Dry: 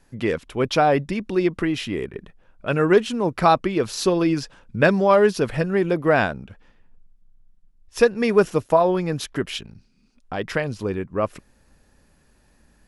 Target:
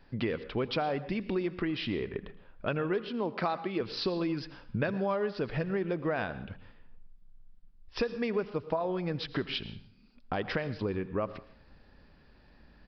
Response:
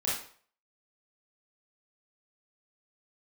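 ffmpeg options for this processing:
-filter_complex "[0:a]asettb=1/sr,asplit=3[link_01][link_02][link_03];[link_01]atrim=end=3.094[link_04];[link_02]atrim=start=3.09:end=3.81,asetpts=PTS-STARTPTS,afade=type=in:duration=0.004:curve=qsin,afade=type=out:start_time=0.716:duration=0.004:curve=qsin,highpass=180[link_05];[link_03]atrim=start=3.806[link_06];[link_04][link_05]acrossfade=duration=0.004:curve1=hsin:curve2=qsin[link_07];[link_07][link_06]acrossfade=duration=0.004:curve1=qsin:curve2=hsin,acompressor=threshold=-29dB:ratio=6,asplit=2[link_08][link_09];[1:a]atrim=start_sample=2205,adelay=82[link_10];[link_09][link_10]afir=irnorm=-1:irlink=0,volume=-21dB[link_11];[link_08][link_11]amix=inputs=2:normalize=0,aresample=11025,aresample=44100"

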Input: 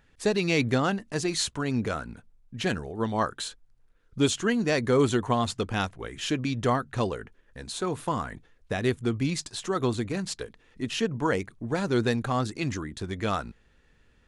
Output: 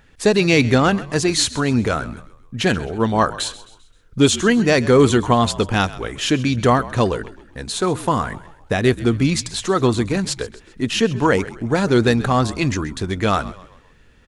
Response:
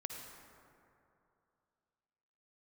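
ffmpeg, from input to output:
-filter_complex "[0:a]acontrast=78,asplit=5[link_01][link_02][link_03][link_04][link_05];[link_02]adelay=131,afreqshift=-54,volume=-17.5dB[link_06];[link_03]adelay=262,afreqshift=-108,volume=-24.8dB[link_07];[link_04]adelay=393,afreqshift=-162,volume=-32.2dB[link_08];[link_05]adelay=524,afreqshift=-216,volume=-39.5dB[link_09];[link_01][link_06][link_07][link_08][link_09]amix=inputs=5:normalize=0,volume=3dB"

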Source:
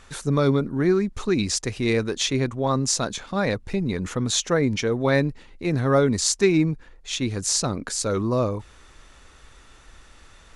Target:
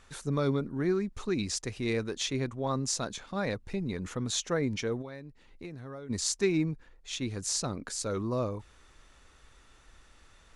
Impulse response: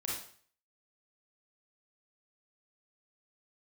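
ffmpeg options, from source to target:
-filter_complex "[0:a]asplit=3[link_01][link_02][link_03];[link_01]afade=type=out:start_time=5.01:duration=0.02[link_04];[link_02]acompressor=threshold=-31dB:ratio=16,afade=type=in:start_time=5.01:duration=0.02,afade=type=out:start_time=6.09:duration=0.02[link_05];[link_03]afade=type=in:start_time=6.09:duration=0.02[link_06];[link_04][link_05][link_06]amix=inputs=3:normalize=0,volume=-8.5dB"

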